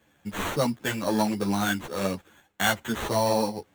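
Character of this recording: aliases and images of a low sample rate 5000 Hz, jitter 0%; a shimmering, thickened sound

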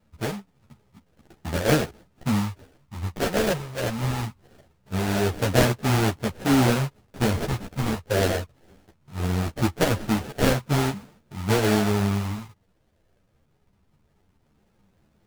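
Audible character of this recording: phasing stages 6, 0.21 Hz, lowest notch 290–4400 Hz; aliases and images of a low sample rate 1100 Hz, jitter 20%; a shimmering, thickened sound

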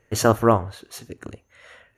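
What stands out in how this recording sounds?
noise floor -66 dBFS; spectral tilt -5.5 dB/oct

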